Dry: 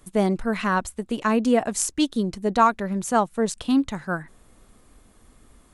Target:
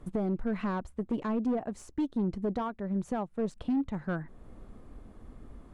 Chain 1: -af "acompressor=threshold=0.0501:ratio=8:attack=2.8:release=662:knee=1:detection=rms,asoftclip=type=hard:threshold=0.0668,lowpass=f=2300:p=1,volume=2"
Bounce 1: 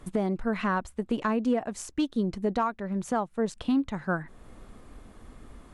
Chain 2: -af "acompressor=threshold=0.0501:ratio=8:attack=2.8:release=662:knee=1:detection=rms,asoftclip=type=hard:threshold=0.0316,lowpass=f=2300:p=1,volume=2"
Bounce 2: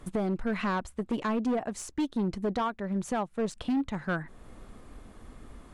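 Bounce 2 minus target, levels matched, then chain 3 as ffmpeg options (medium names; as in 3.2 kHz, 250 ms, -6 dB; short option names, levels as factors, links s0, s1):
2 kHz band +6.0 dB
-af "acompressor=threshold=0.0501:ratio=8:attack=2.8:release=662:knee=1:detection=rms,asoftclip=type=hard:threshold=0.0316,lowpass=f=590:p=1,volume=2"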